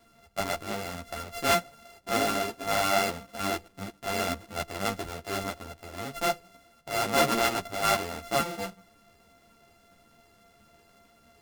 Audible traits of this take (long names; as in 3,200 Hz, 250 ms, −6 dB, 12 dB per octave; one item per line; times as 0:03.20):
a buzz of ramps at a fixed pitch in blocks of 64 samples
a shimmering, thickened sound